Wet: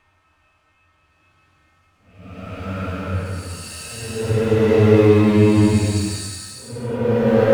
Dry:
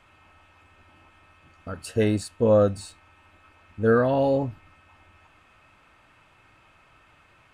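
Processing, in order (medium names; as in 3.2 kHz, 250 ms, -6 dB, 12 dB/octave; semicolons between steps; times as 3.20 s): rattle on loud lows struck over -32 dBFS, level -30 dBFS; waveshaping leveller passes 3; harmonic-percussive split harmonic +9 dB; Paulstretch 6.1×, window 0.25 s, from 1.23 s; trim -6.5 dB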